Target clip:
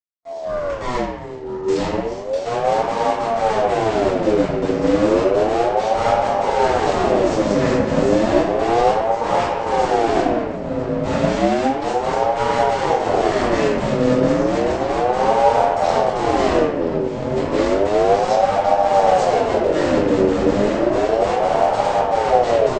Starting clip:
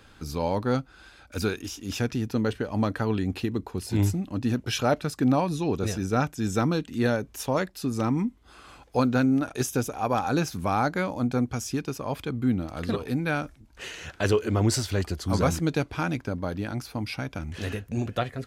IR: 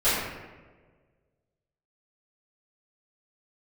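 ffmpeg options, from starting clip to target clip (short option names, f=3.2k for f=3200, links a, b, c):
-filter_complex "[0:a]asubboost=boost=9:cutoff=160,acompressor=threshold=-15dB:ratio=3,aresample=16000,acrusher=bits=4:dc=4:mix=0:aa=0.000001,aresample=44100,atempo=0.81,asplit=2[a][b];[b]adelay=980,lowpass=f=1.1k:p=1,volume=-4dB,asplit=2[c][d];[d]adelay=980,lowpass=f=1.1k:p=1,volume=0.47,asplit=2[e][f];[f]adelay=980,lowpass=f=1.1k:p=1,volume=0.47,asplit=2[g][h];[h]adelay=980,lowpass=f=1.1k:p=1,volume=0.47,asplit=2[i][j];[j]adelay=980,lowpass=f=1.1k:p=1,volume=0.47,asplit=2[k][l];[l]adelay=980,lowpass=f=1.1k:p=1,volume=0.47[m];[a][c][e][g][i][k][m]amix=inputs=7:normalize=0[n];[1:a]atrim=start_sample=2205[o];[n][o]afir=irnorm=-1:irlink=0,aeval=exprs='val(0)*sin(2*PI*540*n/s+540*0.3/0.32*sin(2*PI*0.32*n/s))':c=same,volume=-13.5dB"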